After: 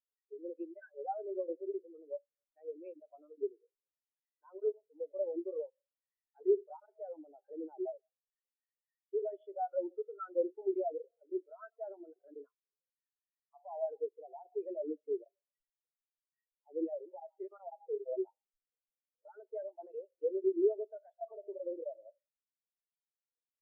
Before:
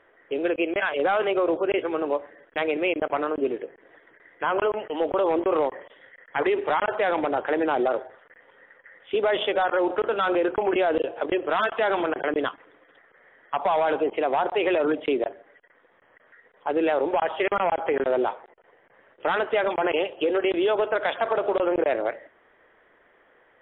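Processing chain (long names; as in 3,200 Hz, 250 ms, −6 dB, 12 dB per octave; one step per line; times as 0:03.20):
converter with a step at zero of −28.5 dBFS
hum removal 89.89 Hz, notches 9
every bin expanded away from the loudest bin 4 to 1
level −7.5 dB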